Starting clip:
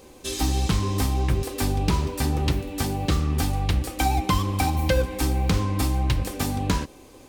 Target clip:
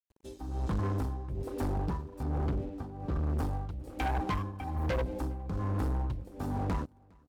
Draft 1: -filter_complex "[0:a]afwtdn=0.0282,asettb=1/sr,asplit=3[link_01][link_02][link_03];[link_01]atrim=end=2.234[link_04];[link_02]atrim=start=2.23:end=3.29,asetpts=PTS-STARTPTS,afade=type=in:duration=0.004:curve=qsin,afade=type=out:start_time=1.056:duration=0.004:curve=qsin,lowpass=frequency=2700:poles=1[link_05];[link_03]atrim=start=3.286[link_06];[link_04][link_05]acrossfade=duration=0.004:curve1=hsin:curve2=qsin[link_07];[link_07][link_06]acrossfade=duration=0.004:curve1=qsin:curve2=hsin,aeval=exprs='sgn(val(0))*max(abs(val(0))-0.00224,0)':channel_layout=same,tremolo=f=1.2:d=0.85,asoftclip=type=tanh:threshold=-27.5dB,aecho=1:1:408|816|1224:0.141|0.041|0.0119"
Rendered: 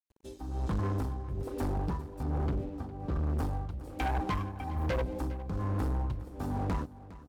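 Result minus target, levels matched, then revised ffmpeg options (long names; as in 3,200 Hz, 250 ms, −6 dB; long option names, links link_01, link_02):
echo-to-direct +11.5 dB
-filter_complex "[0:a]afwtdn=0.0282,asettb=1/sr,asplit=3[link_01][link_02][link_03];[link_01]atrim=end=2.234[link_04];[link_02]atrim=start=2.23:end=3.29,asetpts=PTS-STARTPTS,afade=type=in:duration=0.004:curve=qsin,afade=type=out:start_time=1.056:duration=0.004:curve=qsin,lowpass=frequency=2700:poles=1[link_05];[link_03]atrim=start=3.286[link_06];[link_04][link_05]acrossfade=duration=0.004:curve1=hsin:curve2=qsin[link_07];[link_07][link_06]acrossfade=duration=0.004:curve1=qsin:curve2=hsin,aeval=exprs='sgn(val(0))*max(abs(val(0))-0.00224,0)':channel_layout=same,tremolo=f=1.2:d=0.85,asoftclip=type=tanh:threshold=-27.5dB,aecho=1:1:408|816:0.0376|0.0109"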